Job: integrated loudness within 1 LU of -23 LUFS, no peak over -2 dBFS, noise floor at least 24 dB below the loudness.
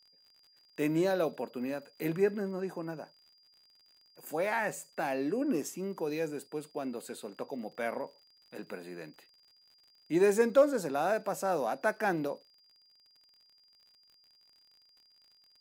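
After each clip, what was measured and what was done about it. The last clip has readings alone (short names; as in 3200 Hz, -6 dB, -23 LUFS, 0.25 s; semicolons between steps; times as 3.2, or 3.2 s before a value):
ticks 50/s; steady tone 4800 Hz; tone level -62 dBFS; loudness -32.5 LUFS; peak -13.5 dBFS; loudness target -23.0 LUFS
-> de-click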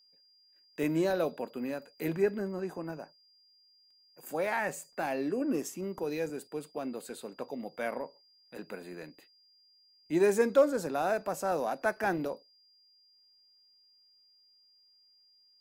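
ticks 0.26/s; steady tone 4800 Hz; tone level -62 dBFS
-> notch 4800 Hz, Q 30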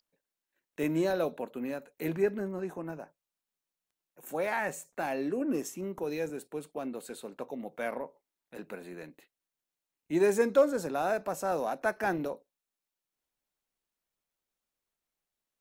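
steady tone none; loudness -32.5 LUFS; peak -13.5 dBFS; loudness target -23.0 LUFS
-> gain +9.5 dB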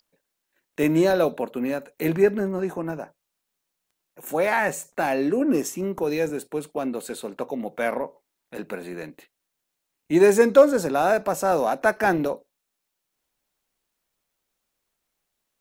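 loudness -23.0 LUFS; peak -4.0 dBFS; noise floor -81 dBFS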